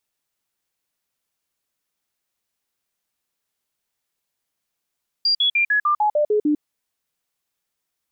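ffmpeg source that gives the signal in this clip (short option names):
-f lavfi -i "aevalsrc='0.178*clip(min(mod(t,0.15),0.1-mod(t,0.15))/0.005,0,1)*sin(2*PI*4770*pow(2,-floor(t/0.15)/2)*mod(t,0.15))':d=1.35:s=44100"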